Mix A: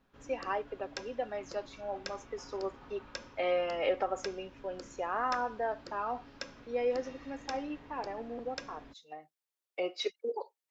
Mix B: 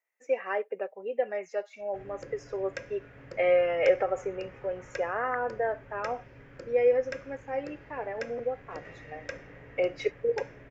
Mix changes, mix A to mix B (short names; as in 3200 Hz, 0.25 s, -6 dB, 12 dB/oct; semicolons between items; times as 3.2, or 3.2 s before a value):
background: entry +1.80 s; master: add graphic EQ 125/250/500/1000/2000/4000 Hz +12/-7/+10/-6/+12/-12 dB